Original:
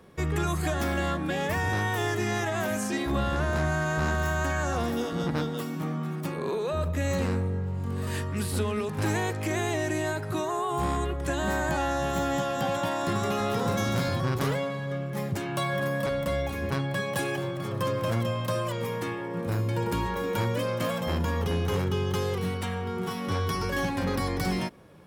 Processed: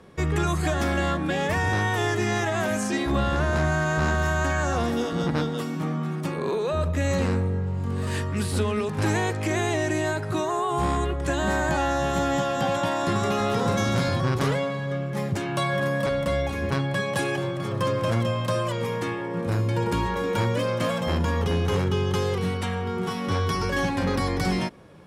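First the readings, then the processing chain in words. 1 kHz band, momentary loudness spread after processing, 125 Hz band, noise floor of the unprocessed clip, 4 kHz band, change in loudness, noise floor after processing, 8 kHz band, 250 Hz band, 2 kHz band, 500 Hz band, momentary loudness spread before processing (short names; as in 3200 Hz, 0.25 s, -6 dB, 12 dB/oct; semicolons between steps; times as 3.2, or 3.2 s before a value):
+3.5 dB, 5 LU, +3.5 dB, -33 dBFS, +3.5 dB, +3.5 dB, -30 dBFS, +2.5 dB, +3.5 dB, +3.5 dB, +3.5 dB, 5 LU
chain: LPF 9700 Hz 12 dB/oct; gain +3.5 dB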